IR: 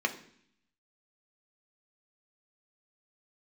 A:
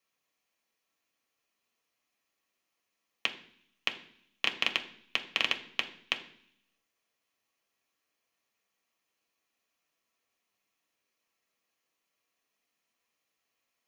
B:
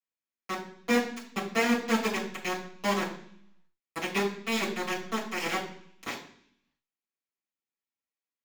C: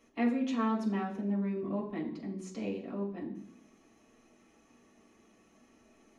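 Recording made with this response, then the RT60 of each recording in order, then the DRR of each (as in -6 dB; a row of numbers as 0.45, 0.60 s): A; 0.60, 0.60, 0.60 s; 4.0, -11.0, -4.0 dB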